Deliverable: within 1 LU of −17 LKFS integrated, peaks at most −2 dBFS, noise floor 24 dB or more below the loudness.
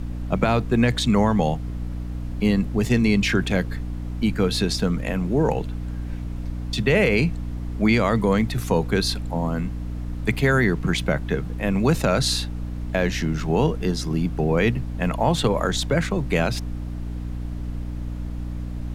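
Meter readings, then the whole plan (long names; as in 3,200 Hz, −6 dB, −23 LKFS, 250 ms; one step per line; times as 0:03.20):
mains hum 60 Hz; hum harmonics up to 300 Hz; level of the hum −27 dBFS; background noise floor −30 dBFS; target noise floor −47 dBFS; integrated loudness −23.0 LKFS; sample peak −6.0 dBFS; target loudness −17.0 LKFS
→ mains-hum notches 60/120/180/240/300 Hz
noise reduction from a noise print 17 dB
level +6 dB
brickwall limiter −2 dBFS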